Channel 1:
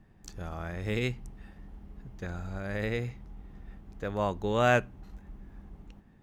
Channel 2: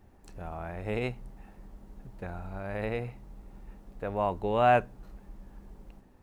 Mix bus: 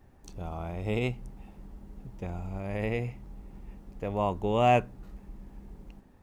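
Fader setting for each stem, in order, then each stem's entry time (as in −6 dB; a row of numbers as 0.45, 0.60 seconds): −6.0, −0.5 decibels; 0.00, 0.00 seconds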